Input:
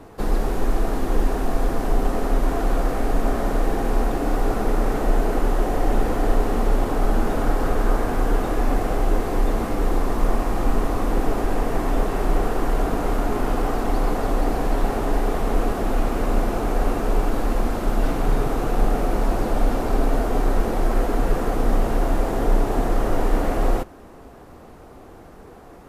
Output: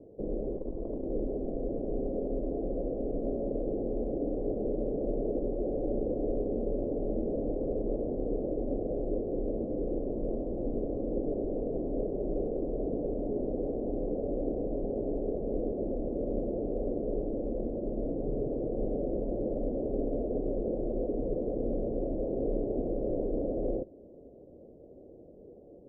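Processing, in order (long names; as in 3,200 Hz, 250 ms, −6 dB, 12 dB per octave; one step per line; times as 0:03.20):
loose part that buzzes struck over −24 dBFS, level −12 dBFS
Chebyshev low-pass filter 580 Hz, order 5
spectral tilt +3.5 dB per octave
0:00.52–0:01.06: saturating transformer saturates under 81 Hz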